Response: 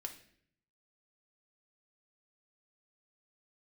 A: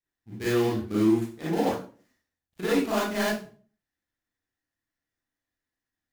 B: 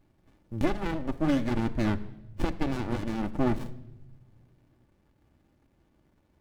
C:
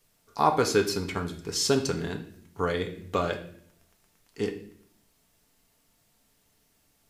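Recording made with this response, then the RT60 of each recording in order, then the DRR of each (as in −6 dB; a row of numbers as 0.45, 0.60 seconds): C; 0.40 s, non-exponential decay, 0.60 s; −9.0, 9.0, 3.5 decibels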